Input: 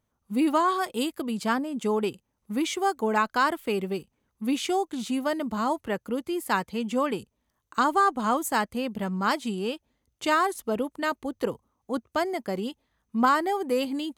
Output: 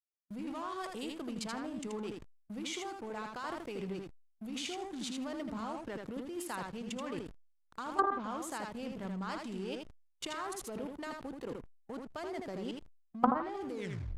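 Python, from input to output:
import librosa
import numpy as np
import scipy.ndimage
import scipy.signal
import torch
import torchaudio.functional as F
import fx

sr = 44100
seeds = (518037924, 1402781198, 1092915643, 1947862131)

y = fx.tape_stop_end(x, sr, length_s=0.46)
y = fx.high_shelf(y, sr, hz=5700.0, db=4.5)
y = fx.level_steps(y, sr, step_db=19)
y = fx.echo_feedback(y, sr, ms=80, feedback_pct=21, wet_db=-4)
y = fx.backlash(y, sr, play_db=-41.5)
y = fx.hpss(y, sr, part='harmonic', gain_db=-3)
y = fx.env_lowpass_down(y, sr, base_hz=540.0, full_db=-21.5)
y = fx.sustainer(y, sr, db_per_s=91.0)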